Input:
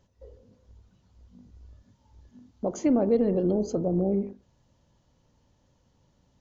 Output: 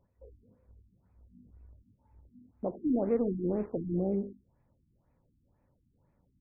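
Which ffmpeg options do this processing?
ffmpeg -i in.wav -filter_complex "[0:a]asettb=1/sr,asplit=3[link_01][link_02][link_03];[link_01]atrim=end=2.854[link_04];[link_02]atrim=start=2.85:end=3.92,asetpts=PTS-STARTPTS,afade=type=in:duration=0.004:curve=qsin,afade=type=out:start_time=1.066:duration=0.004:curve=qsin,aeval=exprs='sgn(val(0))*max(abs(val(0))-0.00891,0)':channel_layout=same[link_05];[link_03]atrim=start=3.916[link_06];[link_04][link_05]acrossfade=duration=0.004:curve1=hsin:curve2=qsin[link_07];[link_07][link_06]acrossfade=duration=0.004:curve1=qsin:curve2=hsin,afftfilt=real='re*lt(b*sr/1024,330*pow(2700/330,0.5+0.5*sin(2*PI*2*pts/sr)))':imag='im*lt(b*sr/1024,330*pow(2700/330,0.5+0.5*sin(2*PI*2*pts/sr)))':win_size=1024:overlap=0.75,volume=-5dB" out.wav

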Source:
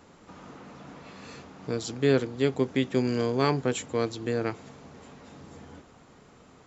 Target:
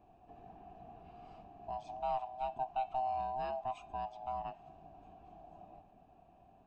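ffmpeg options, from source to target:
ffmpeg -i in.wav -filter_complex "[0:a]afftfilt=real='real(if(lt(b,1008),b+24*(1-2*mod(floor(b/24),2)),b),0)':imag='imag(if(lt(b,1008),b+24*(1-2*mod(floor(b/24),2)),b),0)':win_size=2048:overlap=0.75,acrossover=split=440[link_01][link_02];[link_01]acompressor=threshold=-46dB:ratio=6[link_03];[link_02]asplit=3[link_04][link_05][link_06];[link_04]bandpass=frequency=730:width_type=q:width=8,volume=0dB[link_07];[link_05]bandpass=frequency=1090:width_type=q:width=8,volume=-6dB[link_08];[link_06]bandpass=frequency=2440:width_type=q:width=8,volume=-9dB[link_09];[link_07][link_08][link_09]amix=inputs=3:normalize=0[link_10];[link_03][link_10]amix=inputs=2:normalize=0,bandreject=frequency=203.7:width_type=h:width=4,bandreject=frequency=407.4:width_type=h:width=4,bandreject=frequency=611.1:width_type=h:width=4,bandreject=frequency=814.8:width_type=h:width=4,bandreject=frequency=1018.5:width_type=h:width=4,bandreject=frequency=1222.2:width_type=h:width=4,bandreject=frequency=1425.9:width_type=h:width=4,bandreject=frequency=1629.6:width_type=h:width=4,bandreject=frequency=1833.3:width_type=h:width=4,bandreject=frequency=2037:width_type=h:width=4,bandreject=frequency=2240.7:width_type=h:width=4,bandreject=frequency=2444.4:width_type=h:width=4,bandreject=frequency=2648.1:width_type=h:width=4,bandreject=frequency=2851.8:width_type=h:width=4,bandreject=frequency=3055.5:width_type=h:width=4,bandreject=frequency=3259.2:width_type=h:width=4,bandreject=frequency=3462.9:width_type=h:width=4,bandreject=frequency=3666.6:width_type=h:width=4,bandreject=frequency=3870.3:width_type=h:width=4,bandreject=frequency=4074:width_type=h:width=4,bandreject=frequency=4277.7:width_type=h:width=4,bandreject=frequency=4481.4:width_type=h:width=4,bandreject=frequency=4685.1:width_type=h:width=4,bandreject=frequency=4888.8:width_type=h:width=4,bandreject=frequency=5092.5:width_type=h:width=4,bandreject=frequency=5296.2:width_type=h:width=4,bandreject=frequency=5499.9:width_type=h:width=4,bandreject=frequency=5703.6:width_type=h:width=4,bandreject=frequency=5907.3:width_type=h:width=4,bandreject=frequency=6111:width_type=h:width=4,bandreject=frequency=6314.7:width_type=h:width=4,bandreject=frequency=6518.4:width_type=h:width=4,bandreject=frequency=6722.1:width_type=h:width=4,bandreject=frequency=6925.8:width_type=h:width=4,bandreject=frequency=7129.5:width_type=h:width=4,bandreject=frequency=7333.2:width_type=h:width=4,bandreject=frequency=7536.9:width_type=h:width=4,volume=-4dB" out.wav

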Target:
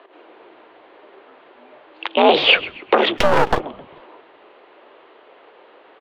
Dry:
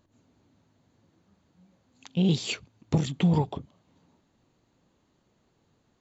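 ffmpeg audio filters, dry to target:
ffmpeg -i in.wav -filter_complex "[0:a]aeval=exprs='0.266*(cos(1*acos(clip(val(0)/0.266,-1,1)))-cos(1*PI/2))+0.106*(cos(5*acos(clip(val(0)/0.266,-1,1)))-cos(5*PI/2))':channel_layout=same,highpass=frequency=350:width_type=q:width=0.5412,highpass=frequency=350:width_type=q:width=1.307,lowpass=frequency=3100:width_type=q:width=0.5176,lowpass=frequency=3100:width_type=q:width=0.7071,lowpass=frequency=3100:width_type=q:width=1.932,afreqshift=64,asplit=2[link_01][link_02];[link_02]asplit=3[link_03][link_04][link_05];[link_03]adelay=132,afreqshift=-110,volume=-20.5dB[link_06];[link_04]adelay=264,afreqshift=-220,volume=-28.7dB[link_07];[link_05]adelay=396,afreqshift=-330,volume=-36.9dB[link_08];[link_06][link_07][link_08]amix=inputs=3:normalize=0[link_09];[link_01][link_09]amix=inputs=2:normalize=0,asplit=3[link_10][link_11][link_12];[link_10]afade=type=out:start_time=3.17:duration=0.02[link_13];[link_11]aeval=exprs='max(val(0),0)':channel_layout=same,afade=type=in:start_time=3.17:duration=0.02,afade=type=out:start_time=3.59:duration=0.02[link_14];[link_12]afade=type=in:start_time=3.59:duration=0.02[link_15];[link_13][link_14][link_15]amix=inputs=3:normalize=0,alimiter=level_in=17.5dB:limit=-1dB:release=50:level=0:latency=1,volume=-1dB" out.wav

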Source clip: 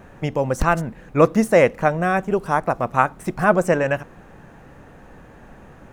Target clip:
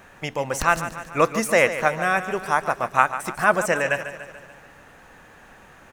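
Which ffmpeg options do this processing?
ffmpeg -i in.wav -filter_complex "[0:a]tiltshelf=frequency=780:gain=-8,asplit=2[link_01][link_02];[link_02]aecho=0:1:145|290|435|580|725|870:0.251|0.141|0.0788|0.0441|0.0247|0.0138[link_03];[link_01][link_03]amix=inputs=2:normalize=0,volume=-2.5dB" out.wav

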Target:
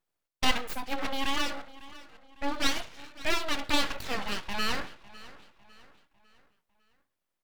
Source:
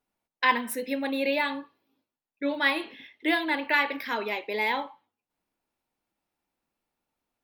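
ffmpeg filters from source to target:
ffmpeg -i in.wav -filter_complex "[0:a]asplit=2[link_01][link_02];[link_02]adelay=552,lowpass=frequency=4000:poles=1,volume=-18dB,asplit=2[link_03][link_04];[link_04]adelay=552,lowpass=frequency=4000:poles=1,volume=0.44,asplit=2[link_05][link_06];[link_06]adelay=552,lowpass=frequency=4000:poles=1,volume=0.44,asplit=2[link_07][link_08];[link_08]adelay=552,lowpass=frequency=4000:poles=1,volume=0.44[link_09];[link_01][link_03][link_05][link_07][link_09]amix=inputs=5:normalize=0,aeval=exprs='abs(val(0))':channel_layout=same" out.wav

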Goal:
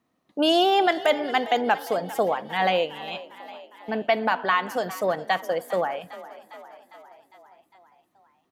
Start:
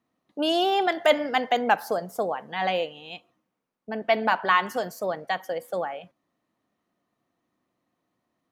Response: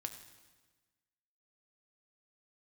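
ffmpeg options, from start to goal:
-filter_complex "[0:a]alimiter=limit=-14dB:level=0:latency=1:release=479,asplit=7[link_01][link_02][link_03][link_04][link_05][link_06][link_07];[link_02]adelay=404,afreqshift=34,volume=-17dB[link_08];[link_03]adelay=808,afreqshift=68,volume=-20.9dB[link_09];[link_04]adelay=1212,afreqshift=102,volume=-24.8dB[link_10];[link_05]adelay=1616,afreqshift=136,volume=-28.6dB[link_11];[link_06]adelay=2020,afreqshift=170,volume=-32.5dB[link_12];[link_07]adelay=2424,afreqshift=204,volume=-36.4dB[link_13];[link_01][link_08][link_09][link_10][link_11][link_12][link_13]amix=inputs=7:normalize=0,volume=4dB"

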